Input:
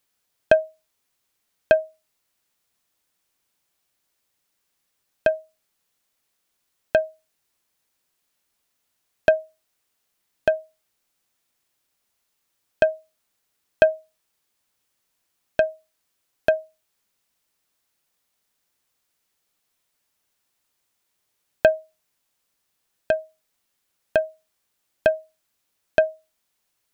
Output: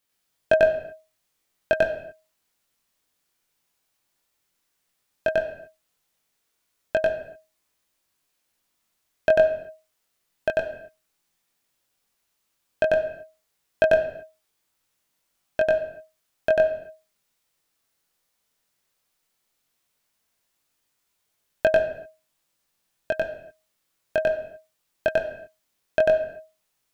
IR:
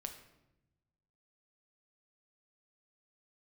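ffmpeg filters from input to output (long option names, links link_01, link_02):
-filter_complex "[0:a]flanger=delay=20:depth=3:speed=0.14,asplit=2[link_01][link_02];[1:a]atrim=start_sample=2205,afade=type=out:start_time=0.34:duration=0.01,atrim=end_sample=15435,adelay=94[link_03];[link_02][link_03]afir=irnorm=-1:irlink=0,volume=3.5dB[link_04];[link_01][link_04]amix=inputs=2:normalize=0"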